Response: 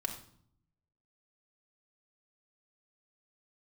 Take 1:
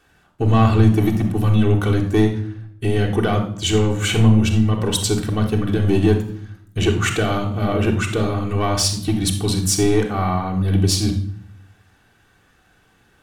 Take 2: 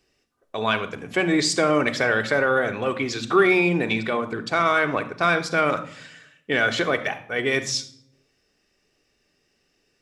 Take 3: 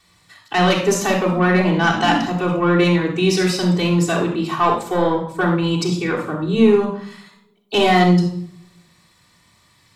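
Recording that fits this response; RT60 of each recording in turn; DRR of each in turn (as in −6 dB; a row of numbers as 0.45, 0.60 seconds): 1; 0.60, 0.65, 0.60 seconds; 0.0, 7.0, −6.0 decibels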